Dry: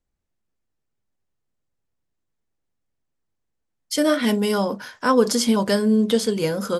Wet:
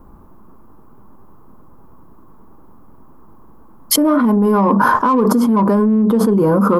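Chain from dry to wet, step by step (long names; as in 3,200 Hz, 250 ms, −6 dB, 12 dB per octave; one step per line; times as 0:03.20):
drawn EQ curve 140 Hz 0 dB, 200 Hz +7 dB, 350 Hz +6 dB, 560 Hz −1 dB, 1,100 Hz +12 dB, 1,900 Hz −17 dB, 3,500 Hz −23 dB, 5,800 Hz −24 dB, 8,500 Hz −22 dB, 12,000 Hz −8 dB
in parallel at −8 dB: soft clipping −17.5 dBFS, distortion −7 dB
on the sum: notch filter 730 Hz, Q 14
envelope flattener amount 100%
level −7 dB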